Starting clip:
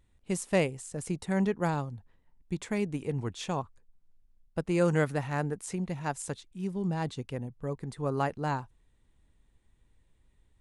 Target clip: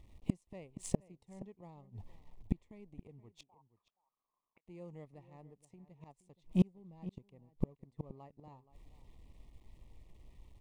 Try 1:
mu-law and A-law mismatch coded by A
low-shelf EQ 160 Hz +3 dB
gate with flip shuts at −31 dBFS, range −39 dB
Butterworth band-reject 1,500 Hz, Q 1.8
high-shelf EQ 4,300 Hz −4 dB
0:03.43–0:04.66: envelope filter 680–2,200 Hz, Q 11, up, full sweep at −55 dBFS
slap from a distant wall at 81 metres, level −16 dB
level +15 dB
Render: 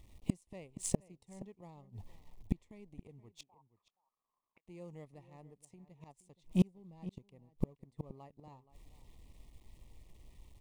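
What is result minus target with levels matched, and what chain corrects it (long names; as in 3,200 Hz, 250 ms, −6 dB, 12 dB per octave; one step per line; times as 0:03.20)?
8,000 Hz band +7.0 dB
mu-law and A-law mismatch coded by A
low-shelf EQ 160 Hz +3 dB
gate with flip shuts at −31 dBFS, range −39 dB
Butterworth band-reject 1,500 Hz, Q 1.8
high-shelf EQ 4,300 Hz −13.5 dB
0:03.43–0:04.66: envelope filter 680–2,200 Hz, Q 11, up, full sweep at −55 dBFS
slap from a distant wall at 81 metres, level −16 dB
level +15 dB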